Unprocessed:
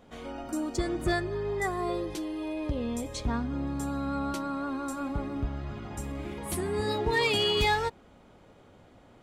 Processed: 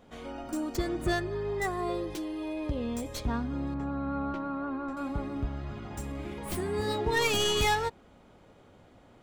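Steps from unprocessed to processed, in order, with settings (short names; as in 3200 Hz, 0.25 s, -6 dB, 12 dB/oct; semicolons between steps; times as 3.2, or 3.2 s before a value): tracing distortion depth 0.082 ms; 3.74–4.97 LPF 2000 Hz 12 dB/oct; gain -1 dB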